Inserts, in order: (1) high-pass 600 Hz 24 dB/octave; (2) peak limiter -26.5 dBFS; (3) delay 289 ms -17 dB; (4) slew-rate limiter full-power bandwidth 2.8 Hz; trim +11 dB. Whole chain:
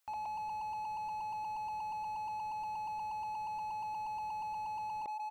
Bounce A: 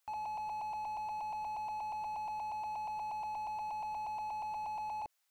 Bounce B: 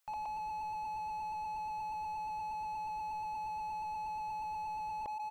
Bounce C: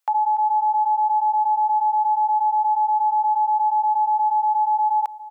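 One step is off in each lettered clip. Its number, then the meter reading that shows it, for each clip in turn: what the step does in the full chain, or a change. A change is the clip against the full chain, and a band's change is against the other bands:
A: 3, 500 Hz band +4.5 dB; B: 2, mean gain reduction 5.5 dB; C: 4, loudness change +20.0 LU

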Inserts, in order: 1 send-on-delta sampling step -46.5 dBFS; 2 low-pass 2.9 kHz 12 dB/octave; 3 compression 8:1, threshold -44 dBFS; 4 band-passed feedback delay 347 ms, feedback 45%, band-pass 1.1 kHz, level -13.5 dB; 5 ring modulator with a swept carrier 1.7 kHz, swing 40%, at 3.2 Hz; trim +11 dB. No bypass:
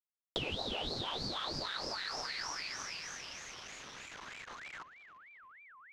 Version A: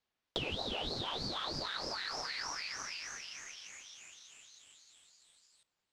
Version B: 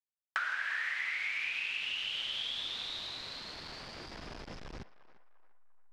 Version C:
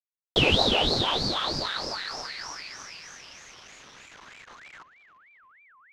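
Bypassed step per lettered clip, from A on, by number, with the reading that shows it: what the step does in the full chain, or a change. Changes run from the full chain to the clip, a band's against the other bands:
1, distortion -18 dB; 5, momentary loudness spread change -5 LU; 3, mean gain reduction 5.0 dB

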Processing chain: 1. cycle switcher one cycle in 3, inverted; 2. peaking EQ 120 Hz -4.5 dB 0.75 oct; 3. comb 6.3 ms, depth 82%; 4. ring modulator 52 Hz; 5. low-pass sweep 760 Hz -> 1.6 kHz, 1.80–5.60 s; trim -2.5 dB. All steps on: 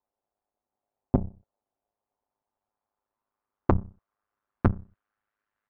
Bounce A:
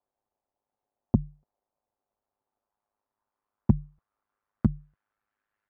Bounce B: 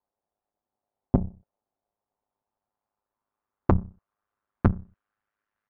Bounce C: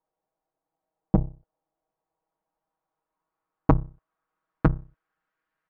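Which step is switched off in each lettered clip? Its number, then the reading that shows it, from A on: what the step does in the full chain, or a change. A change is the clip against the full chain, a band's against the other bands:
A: 1, 1 kHz band -14.0 dB; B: 2, 125 Hz band +2.0 dB; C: 4, momentary loudness spread change +5 LU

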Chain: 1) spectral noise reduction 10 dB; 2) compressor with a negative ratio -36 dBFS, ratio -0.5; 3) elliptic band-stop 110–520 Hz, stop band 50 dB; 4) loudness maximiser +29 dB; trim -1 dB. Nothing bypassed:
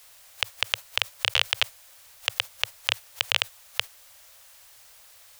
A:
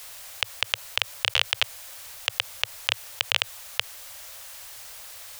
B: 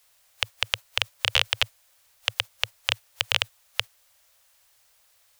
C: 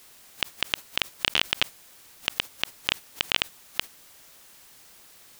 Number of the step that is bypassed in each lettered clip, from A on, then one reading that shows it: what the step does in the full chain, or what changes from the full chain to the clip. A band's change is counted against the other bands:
1, 8 kHz band +2.0 dB; 2, 125 Hz band +5.0 dB; 3, 500 Hz band +2.0 dB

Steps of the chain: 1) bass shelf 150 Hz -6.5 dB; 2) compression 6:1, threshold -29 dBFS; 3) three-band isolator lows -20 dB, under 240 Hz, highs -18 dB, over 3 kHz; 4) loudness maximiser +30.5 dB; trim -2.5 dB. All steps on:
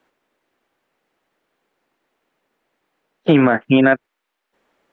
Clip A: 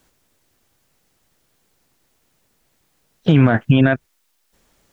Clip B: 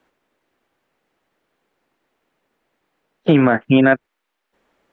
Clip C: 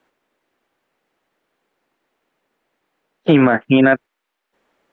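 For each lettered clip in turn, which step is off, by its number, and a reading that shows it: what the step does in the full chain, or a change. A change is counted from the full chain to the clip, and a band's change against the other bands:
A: 3, 125 Hz band +12.0 dB; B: 1, 125 Hz band +2.0 dB; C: 2, mean gain reduction 4.0 dB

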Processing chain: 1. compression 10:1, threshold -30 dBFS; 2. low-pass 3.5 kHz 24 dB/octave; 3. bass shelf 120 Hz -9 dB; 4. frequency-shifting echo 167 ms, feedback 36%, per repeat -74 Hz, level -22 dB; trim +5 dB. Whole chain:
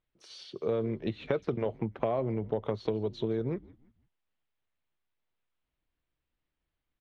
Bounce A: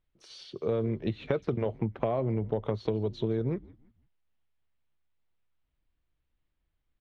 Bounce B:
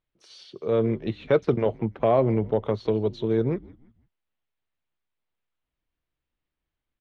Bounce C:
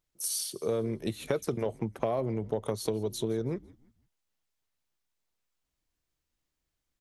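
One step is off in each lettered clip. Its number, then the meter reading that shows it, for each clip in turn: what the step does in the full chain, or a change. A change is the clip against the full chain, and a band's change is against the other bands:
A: 3, 125 Hz band +4.5 dB; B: 1, mean gain reduction 5.5 dB; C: 2, 4 kHz band +7.0 dB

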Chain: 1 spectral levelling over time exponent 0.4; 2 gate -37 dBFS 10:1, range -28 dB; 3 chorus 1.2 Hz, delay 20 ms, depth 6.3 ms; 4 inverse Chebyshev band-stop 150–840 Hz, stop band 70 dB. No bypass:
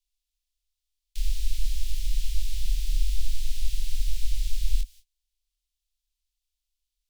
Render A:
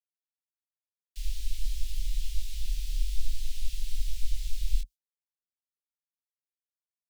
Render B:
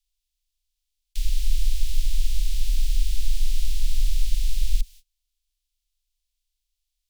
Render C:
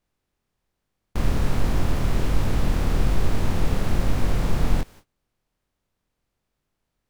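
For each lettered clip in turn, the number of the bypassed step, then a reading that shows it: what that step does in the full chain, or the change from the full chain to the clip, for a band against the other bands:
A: 1, crest factor change +1.5 dB; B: 3, loudness change +3.5 LU; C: 4, 2 kHz band +13.0 dB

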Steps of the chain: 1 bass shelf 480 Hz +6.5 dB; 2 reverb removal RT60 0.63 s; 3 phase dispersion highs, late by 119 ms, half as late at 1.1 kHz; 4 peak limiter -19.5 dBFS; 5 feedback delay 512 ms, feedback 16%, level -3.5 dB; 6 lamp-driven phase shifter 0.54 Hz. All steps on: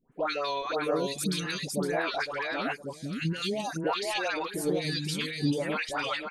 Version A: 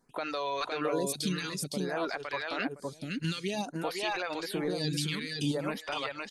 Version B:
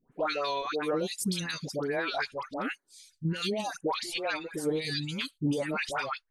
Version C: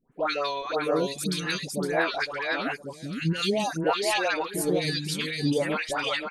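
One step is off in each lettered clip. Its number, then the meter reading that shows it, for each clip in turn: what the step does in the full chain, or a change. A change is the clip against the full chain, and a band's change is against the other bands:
3, 8 kHz band +1.5 dB; 5, momentary loudness spread change +1 LU; 4, mean gain reduction 2.0 dB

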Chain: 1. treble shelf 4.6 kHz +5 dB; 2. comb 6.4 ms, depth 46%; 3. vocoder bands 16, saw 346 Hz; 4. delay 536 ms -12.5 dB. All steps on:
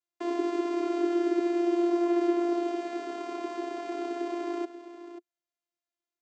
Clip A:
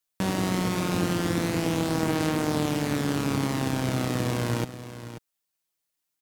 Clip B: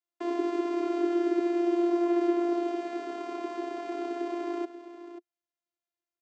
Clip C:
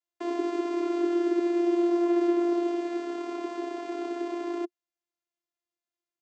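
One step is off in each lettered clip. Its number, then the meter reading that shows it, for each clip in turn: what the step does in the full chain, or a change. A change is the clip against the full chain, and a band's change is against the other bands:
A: 3, 4 kHz band +10.5 dB; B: 1, 4 kHz band -2.0 dB; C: 4, 250 Hz band +1.5 dB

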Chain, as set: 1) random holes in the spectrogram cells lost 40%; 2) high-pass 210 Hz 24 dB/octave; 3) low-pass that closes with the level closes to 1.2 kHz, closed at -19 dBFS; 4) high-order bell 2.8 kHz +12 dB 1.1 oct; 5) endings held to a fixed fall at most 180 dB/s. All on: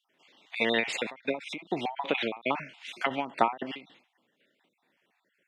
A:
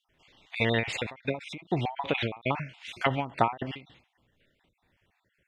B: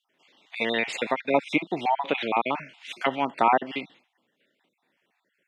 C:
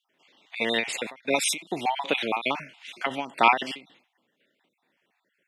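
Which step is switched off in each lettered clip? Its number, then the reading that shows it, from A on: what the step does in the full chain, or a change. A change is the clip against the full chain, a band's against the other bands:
2, 125 Hz band +15.5 dB; 5, crest factor change -5.0 dB; 3, 8 kHz band +12.5 dB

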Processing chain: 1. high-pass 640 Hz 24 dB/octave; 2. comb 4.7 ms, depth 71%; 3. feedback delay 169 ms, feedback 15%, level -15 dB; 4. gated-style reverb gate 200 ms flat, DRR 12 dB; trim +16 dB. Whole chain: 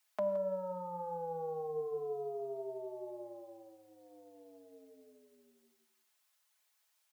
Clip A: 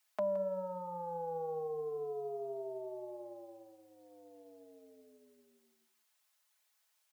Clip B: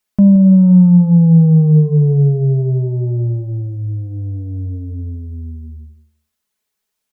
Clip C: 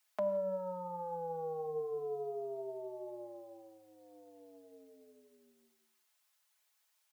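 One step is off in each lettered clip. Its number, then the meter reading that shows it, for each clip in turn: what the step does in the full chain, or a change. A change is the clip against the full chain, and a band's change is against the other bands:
4, echo-to-direct -10.0 dB to -15.0 dB; 1, crest factor change -7.5 dB; 3, echo-to-direct -10.0 dB to -12.0 dB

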